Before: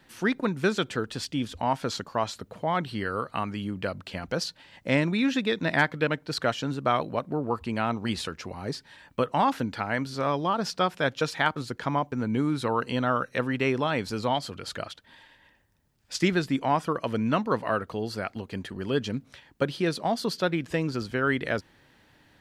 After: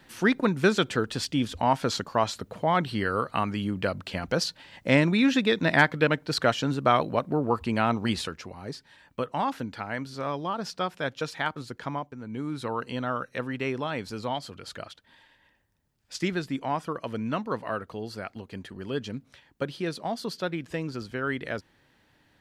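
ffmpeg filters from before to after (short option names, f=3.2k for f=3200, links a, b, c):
-af "volume=10.5dB,afade=t=out:st=8.02:d=0.5:silence=0.421697,afade=t=out:st=11.88:d=0.31:silence=0.421697,afade=t=in:st=12.19:d=0.44:silence=0.421697"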